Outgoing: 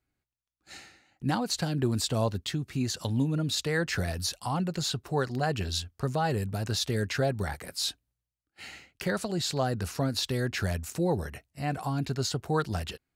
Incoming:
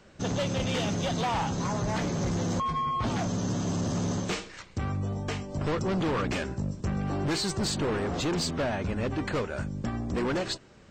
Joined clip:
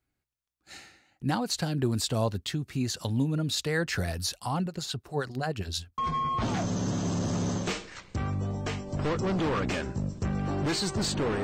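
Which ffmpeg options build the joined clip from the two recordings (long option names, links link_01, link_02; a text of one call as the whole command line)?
ffmpeg -i cue0.wav -i cue1.wav -filter_complex "[0:a]asettb=1/sr,asplit=3[link_01][link_02][link_03];[link_01]atrim=end=4.664[link_04];[link_02]atrim=start=4.66:end=5.98,asetpts=PTS-STARTPTS,afade=type=in:duration=0.004:curve=qsin,afade=type=out:start_time=1.316:duration=0.004:curve=qsin,acrossover=split=730[link_05][link_06];[link_05]aeval=exprs='val(0)*(1-0.7/2+0.7/2*cos(2*PI*9.6*n/s))':channel_layout=same[link_07];[link_06]aeval=exprs='val(0)*(1-0.7/2-0.7/2*cos(2*PI*9.6*n/s))':channel_layout=same[link_08];[link_07][link_08]amix=inputs=2:normalize=0[link_09];[link_03]atrim=start=5.976[link_10];[link_04][link_09]acrossfade=duration=0.004:curve1=hsin:curve2=qsin[link_11];[link_11][link_10]acrossfade=duration=0.004:curve1=qsin:curve2=hsin,apad=whole_dur=11.43,atrim=end=11.43,atrim=end=5.982[link_12];[1:a]atrim=start=2.598:end=8.05[link_13];[link_12][link_13]acrossfade=duration=0.004:curve1=hsin:curve2=hsin" out.wav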